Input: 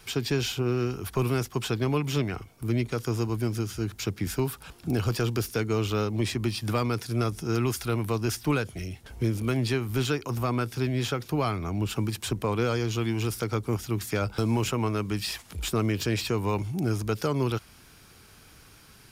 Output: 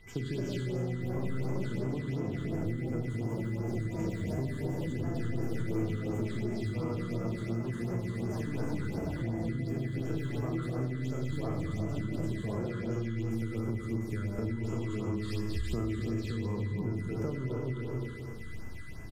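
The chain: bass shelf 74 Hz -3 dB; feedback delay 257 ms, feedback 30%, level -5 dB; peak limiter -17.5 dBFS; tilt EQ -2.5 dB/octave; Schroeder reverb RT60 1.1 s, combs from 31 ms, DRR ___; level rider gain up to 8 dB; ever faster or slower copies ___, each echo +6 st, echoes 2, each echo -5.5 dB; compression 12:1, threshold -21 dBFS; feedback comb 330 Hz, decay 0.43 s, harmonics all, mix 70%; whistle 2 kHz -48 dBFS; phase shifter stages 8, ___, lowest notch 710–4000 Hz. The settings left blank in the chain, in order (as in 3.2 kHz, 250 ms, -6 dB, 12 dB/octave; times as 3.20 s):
-0.5 dB, 270 ms, 2.8 Hz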